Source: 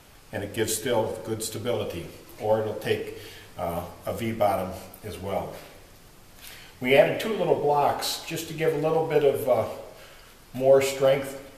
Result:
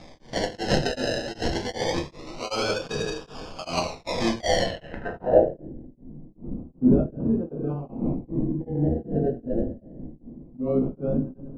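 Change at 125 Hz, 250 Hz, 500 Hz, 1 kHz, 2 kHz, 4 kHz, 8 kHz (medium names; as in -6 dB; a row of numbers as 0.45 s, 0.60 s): +4.5 dB, +7.5 dB, -3.0 dB, -4.0 dB, -1.5 dB, +2.0 dB, -4.0 dB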